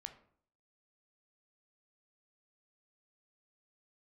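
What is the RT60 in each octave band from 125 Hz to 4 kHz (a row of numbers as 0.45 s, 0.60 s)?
0.65 s, 0.60 s, 0.60 s, 0.55 s, 0.45 s, 0.35 s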